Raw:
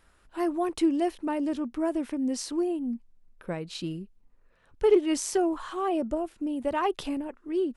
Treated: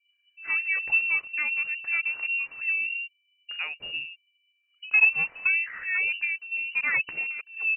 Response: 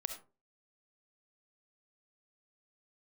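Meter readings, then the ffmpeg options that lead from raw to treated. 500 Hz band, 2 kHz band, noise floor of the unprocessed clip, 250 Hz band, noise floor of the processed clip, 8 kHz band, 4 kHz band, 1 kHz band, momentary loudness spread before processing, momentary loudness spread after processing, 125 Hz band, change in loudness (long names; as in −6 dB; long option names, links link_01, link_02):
below −25 dB, +21.0 dB, −63 dBFS, below −30 dB, −72 dBFS, below −40 dB, +3.0 dB, −12.5 dB, 12 LU, 12 LU, below −10 dB, +4.0 dB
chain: -filter_complex "[0:a]highpass=41,acrossover=split=220[link_01][link_02];[link_02]adelay=100[link_03];[link_01][link_03]amix=inputs=2:normalize=0,aeval=exprs='val(0)+0.00112*sin(2*PI*660*n/s)':channel_layout=same,anlmdn=0.01,lowpass=frequency=2600:width_type=q:width=0.5098,lowpass=frequency=2600:width_type=q:width=0.6013,lowpass=frequency=2600:width_type=q:width=0.9,lowpass=frequency=2600:width_type=q:width=2.563,afreqshift=-3000,volume=1.5dB"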